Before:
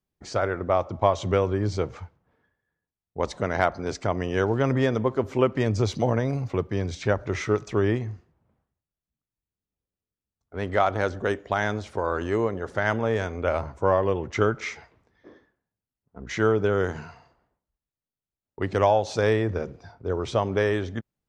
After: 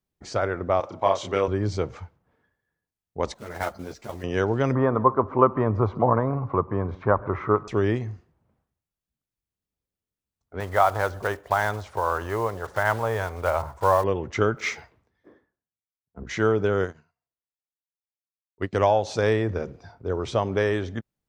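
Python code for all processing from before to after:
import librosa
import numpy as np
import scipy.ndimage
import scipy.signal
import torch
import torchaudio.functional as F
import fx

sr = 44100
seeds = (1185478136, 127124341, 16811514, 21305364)

y = fx.chain(x, sr, fx.highpass(hz=470.0, slope=6),
    fx.doubler(ms=31.0, db=-2.5), at=(0.8, 1.48))
y = fx.chain(y, sr, fx.block_float(bits=5),
    fx.level_steps(step_db=11),
    fx.ensemble(), at=(3.34, 4.24))
y = fx.chain(y, sr, fx.lowpass_res(hz=1100.0, q=5.3),
    fx.echo_single(ms=140, db=-22.0), at=(4.75, 7.68))
y = fx.chain(y, sr, fx.block_float(bits=5),
    fx.curve_eq(hz=(110.0, 240.0, 950.0, 2500.0), db=(0, -10, 6, -3)), at=(10.6, 14.04))
y = fx.chain(y, sr, fx.block_float(bits=7),
    fx.highpass(hz=45.0, slope=12),
    fx.band_widen(depth_pct=70), at=(14.57, 16.24))
y = fx.chain(y, sr, fx.notch(hz=840.0, q=6.6),
    fx.upward_expand(threshold_db=-49.0, expansion=2.5), at=(16.84, 18.73))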